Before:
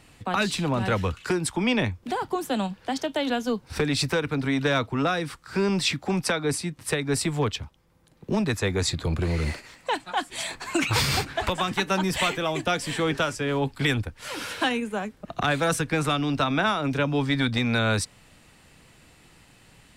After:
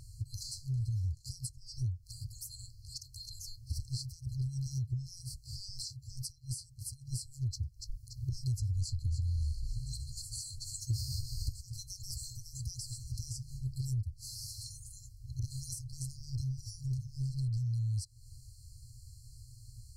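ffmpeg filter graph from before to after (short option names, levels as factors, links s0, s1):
-filter_complex "[0:a]asettb=1/sr,asplit=3[s0][s1][s2];[s0]atrim=end=7.504[s3];[s1]atrim=start=7.5:end=11.61,asetpts=PTS-STARTPTS,afade=t=in:d=0.004:c=qsin,afade=t=out:st=4.106:d=0.004:c=qsin,acontrast=67,asplit=5[s4][s5][s6][s7][s8];[s5]adelay=287,afreqshift=-110,volume=0.299[s9];[s6]adelay=574,afreqshift=-220,volume=0.101[s10];[s7]adelay=861,afreqshift=-330,volume=0.0347[s11];[s8]adelay=1148,afreqshift=-440,volume=0.0117[s12];[s4][s9][s10][s11][s12]amix=inputs=5:normalize=0,atrim=end_sample=181251[s13];[s2]atrim=start=11.606[s14];[s3][s13]acrossfade=d=0.004:c1=hsin:c2=qsin[s15];[s15][s14]acrossfade=d=0.004:c1=qsin:c2=hsin,afftfilt=real='re*(1-between(b*sr/4096,130,4100))':imag='im*(1-between(b*sr/4096,130,4100))':win_size=4096:overlap=0.75,acompressor=threshold=0.00891:ratio=6,lowshelf=f=750:t=q:w=3:g=8.5"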